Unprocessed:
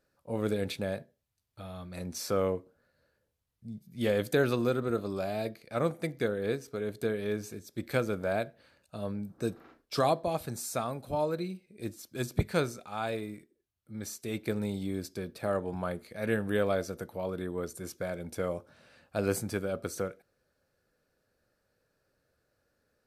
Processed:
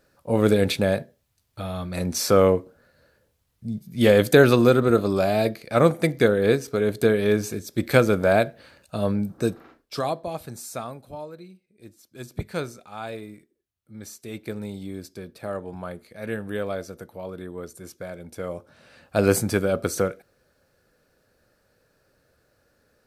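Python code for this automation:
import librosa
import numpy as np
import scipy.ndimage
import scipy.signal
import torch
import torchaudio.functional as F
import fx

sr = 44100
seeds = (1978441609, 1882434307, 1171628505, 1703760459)

y = fx.gain(x, sr, db=fx.line((9.23, 12.0), (10.02, 0.0), (10.86, 0.0), (11.31, -8.5), (11.87, -8.5), (12.58, -0.5), (18.35, -0.5), (19.19, 10.5)))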